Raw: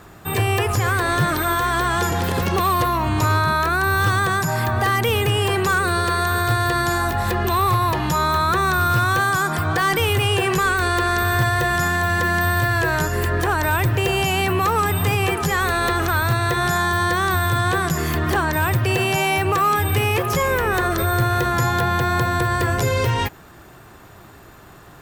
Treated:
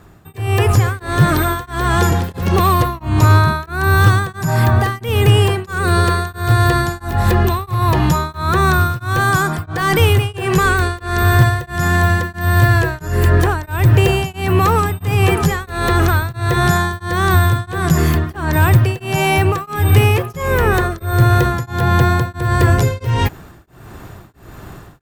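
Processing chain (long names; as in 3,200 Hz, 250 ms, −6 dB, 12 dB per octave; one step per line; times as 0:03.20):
automatic gain control gain up to 11 dB
low-shelf EQ 310 Hz +8.5 dB
tremolo along a rectified sine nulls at 1.5 Hz
level −5 dB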